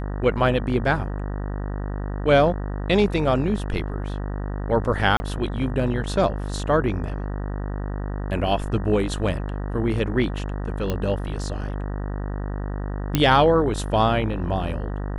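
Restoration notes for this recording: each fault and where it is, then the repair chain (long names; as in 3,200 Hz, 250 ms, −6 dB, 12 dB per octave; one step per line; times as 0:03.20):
mains buzz 50 Hz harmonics 38 −28 dBFS
0:05.17–0:05.20: drop-out 30 ms
0:10.90: click −12 dBFS
0:13.15: click −5 dBFS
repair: click removal
hum removal 50 Hz, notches 38
repair the gap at 0:05.17, 30 ms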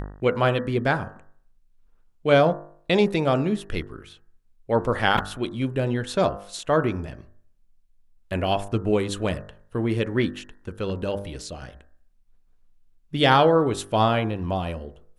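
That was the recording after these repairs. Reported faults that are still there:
0:13.15: click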